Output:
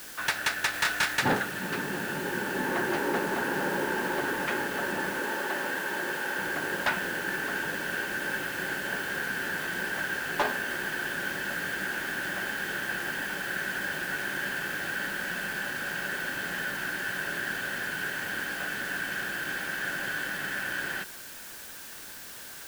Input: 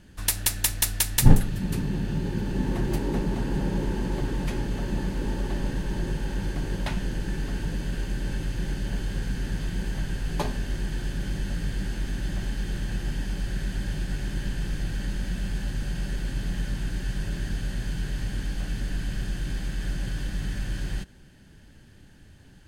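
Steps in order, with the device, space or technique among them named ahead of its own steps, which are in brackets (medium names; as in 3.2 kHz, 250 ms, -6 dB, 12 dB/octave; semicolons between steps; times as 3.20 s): drive-through speaker (band-pass 490–3000 Hz; peaking EQ 1.5 kHz +9.5 dB 0.48 oct; hard clipper -27 dBFS, distortion -14 dB; white noise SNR 12 dB); 0.71–1.17 s: doubling 27 ms -2.5 dB; 5.20–6.39 s: high-pass 270 Hz 6 dB/octave; trim +7 dB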